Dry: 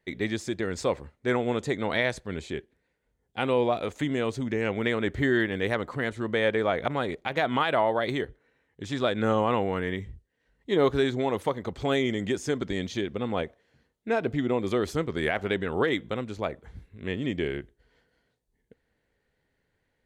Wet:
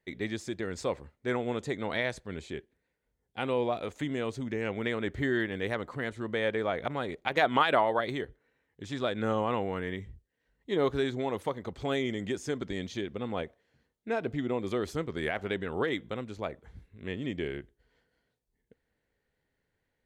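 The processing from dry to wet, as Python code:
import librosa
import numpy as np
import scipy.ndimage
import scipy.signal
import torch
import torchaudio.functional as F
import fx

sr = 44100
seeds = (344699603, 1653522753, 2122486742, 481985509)

y = fx.hpss(x, sr, part='percussive', gain_db=7, at=(7.27, 8.01))
y = y * librosa.db_to_amplitude(-5.0)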